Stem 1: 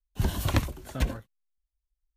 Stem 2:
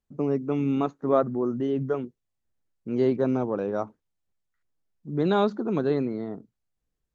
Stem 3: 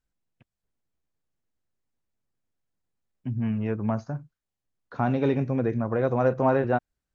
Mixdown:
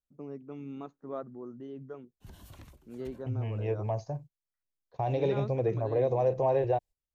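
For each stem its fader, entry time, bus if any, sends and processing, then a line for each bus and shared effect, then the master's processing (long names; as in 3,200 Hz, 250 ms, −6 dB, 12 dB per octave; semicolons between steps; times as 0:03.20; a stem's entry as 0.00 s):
−20.0 dB, 2.05 s, no send, brickwall limiter −20.5 dBFS, peak gain reduction 10.5 dB
−16.5 dB, 0.00 s, no send, no processing
+1.0 dB, 0.00 s, no send, noise gate −41 dBFS, range −16 dB; brickwall limiter −15.5 dBFS, peak gain reduction 5 dB; phaser with its sweep stopped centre 570 Hz, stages 4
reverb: not used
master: no processing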